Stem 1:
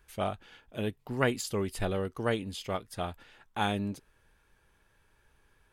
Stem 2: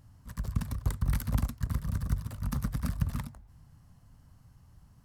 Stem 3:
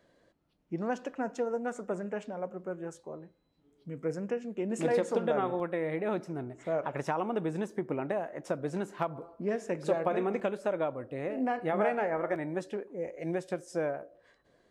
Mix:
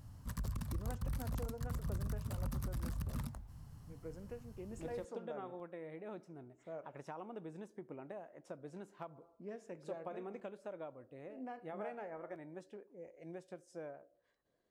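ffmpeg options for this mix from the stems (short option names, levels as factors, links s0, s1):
-filter_complex "[1:a]acompressor=threshold=0.02:ratio=6,alimiter=level_in=3.35:limit=0.0631:level=0:latency=1:release=16,volume=0.299,volume=1.33[s0];[2:a]volume=0.168[s1];[s0][s1]amix=inputs=2:normalize=0,equalizer=f=1900:w=1.5:g=-2.5"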